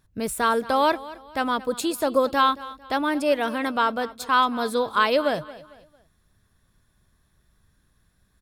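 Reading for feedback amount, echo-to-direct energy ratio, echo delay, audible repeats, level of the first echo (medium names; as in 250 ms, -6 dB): 36%, -17.5 dB, 225 ms, 2, -18.0 dB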